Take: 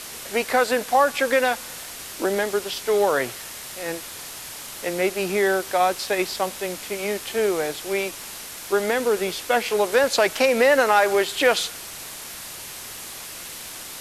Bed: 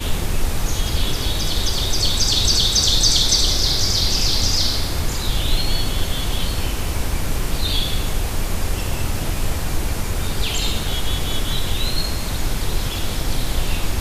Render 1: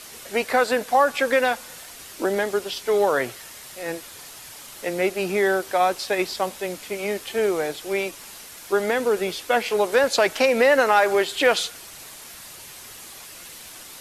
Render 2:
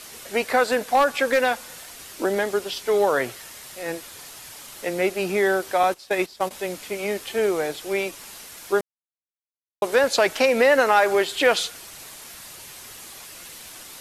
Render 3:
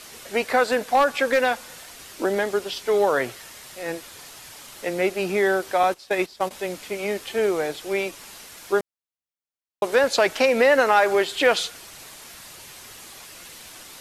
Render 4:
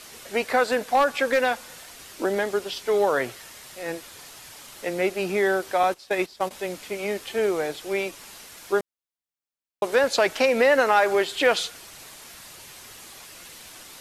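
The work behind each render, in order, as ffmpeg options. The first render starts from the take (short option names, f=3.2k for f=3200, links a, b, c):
-af "afftdn=nr=6:nf=-37"
-filter_complex "[0:a]asettb=1/sr,asplit=3[a][b][c];[a]atrim=end=0.684[d];[b]atrim=start=0.68:end=1.39,asetpts=PTS-STARTPTS,afade=t=in:d=0.004:c=qsin,afade=t=out:st=0.706:d=0.004:c=qsin,aeval=exprs='0.299*(abs(mod(val(0)/0.299+3,4)-2)-1)':c=same[e];[c]atrim=start=1.386[f];[d][e]acrossfade=d=0.004:c1=hsin:c2=qsin[g];[g][f]acrossfade=d=0.004:c1=qsin:c2=hsin,asettb=1/sr,asplit=3[h][i][j];[h]atrim=end=5.834[k];[i]atrim=start=5.83:end=6.51,asetpts=PTS-STARTPTS,afade=t=in:d=0.004:c=qsin,afade=t=out:st=0.676:d=0.004:c=qsin,agate=range=-14dB:threshold=-28dB:ratio=16:release=100:detection=peak[l];[j]atrim=start=6.506[m];[k][l]acrossfade=d=0.004:c1=hsin:c2=qsin[n];[n][m]acrossfade=d=0.004:c1=qsin:c2=hsin,asplit=3[o][p][q];[o]atrim=end=8.81,asetpts=PTS-STARTPTS,afade=t=out:st=8.806:d=0.004:c=hsin[r];[p]atrim=start=8.81:end=9.82,asetpts=PTS-STARTPTS,volume=0[s];[q]atrim=start=9.82,asetpts=PTS-STARTPTS,afade=t=in:d=0.004:c=hsin[t];[r][s][t]concat=n=3:v=0:a=1"
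-af "equalizer=f=12k:t=o:w=1.2:g=-3.5"
-af "volume=-1.5dB"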